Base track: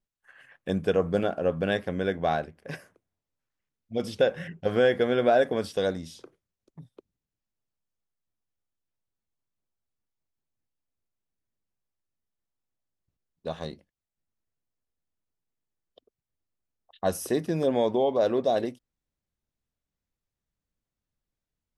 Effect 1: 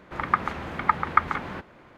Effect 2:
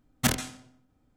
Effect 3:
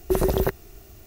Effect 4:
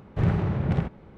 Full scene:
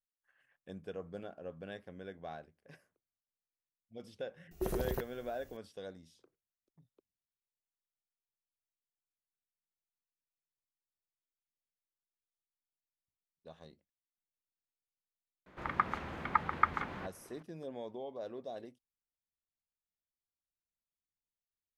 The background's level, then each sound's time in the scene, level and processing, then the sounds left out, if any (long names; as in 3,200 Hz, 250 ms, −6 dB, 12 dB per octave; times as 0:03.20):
base track −19.5 dB
0:04.51: mix in 3 −14 dB
0:15.46: mix in 1 −8.5 dB
not used: 2, 4